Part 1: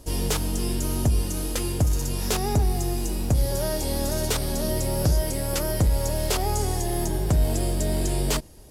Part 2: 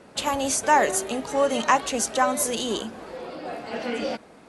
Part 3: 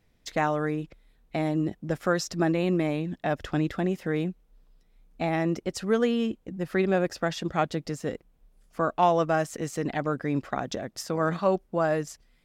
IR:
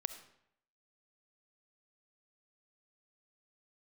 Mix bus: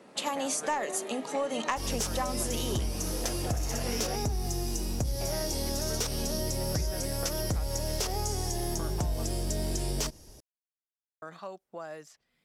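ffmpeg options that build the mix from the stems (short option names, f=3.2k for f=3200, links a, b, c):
-filter_complex "[0:a]equalizer=f=5.7k:t=o:w=0.4:g=11,adelay=1700,volume=-4dB[a];[1:a]highpass=f=160:w=0.5412,highpass=f=160:w=1.3066,bandreject=f=1.5k:w=12,aeval=exprs='0.473*(cos(1*acos(clip(val(0)/0.473,-1,1)))-cos(1*PI/2))+0.15*(cos(2*acos(clip(val(0)/0.473,-1,1)))-cos(2*PI/2))+0.0376*(cos(4*acos(clip(val(0)/0.473,-1,1)))-cos(4*PI/2))':c=same,volume=-4dB[b];[2:a]highpass=100,acrossover=split=470|4500[c][d][e];[c]acompressor=threshold=-49dB:ratio=4[f];[d]acompressor=threshold=-35dB:ratio=4[g];[e]acompressor=threshold=-53dB:ratio=4[h];[f][g][h]amix=inputs=3:normalize=0,volume=-5.5dB,asplit=3[i][j][k];[i]atrim=end=9.27,asetpts=PTS-STARTPTS,afade=t=out:st=9.266:d=0.004:c=hsin[l];[j]atrim=start=9.27:end=11.22,asetpts=PTS-STARTPTS,volume=0[m];[k]atrim=start=11.22,asetpts=PTS-STARTPTS,afade=t=in:d=0.004:c=hsin[n];[l][m][n]concat=n=3:v=0:a=1[o];[a][b][o]amix=inputs=3:normalize=0,acompressor=threshold=-27dB:ratio=6"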